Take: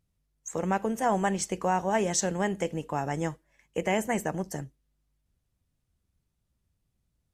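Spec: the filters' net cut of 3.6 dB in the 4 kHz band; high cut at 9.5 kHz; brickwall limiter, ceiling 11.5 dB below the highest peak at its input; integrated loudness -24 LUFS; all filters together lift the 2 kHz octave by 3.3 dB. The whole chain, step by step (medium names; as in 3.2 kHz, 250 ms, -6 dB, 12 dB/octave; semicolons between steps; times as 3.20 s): low-pass 9.5 kHz; peaking EQ 2 kHz +5.5 dB; peaking EQ 4 kHz -8 dB; trim +11 dB; peak limiter -13.5 dBFS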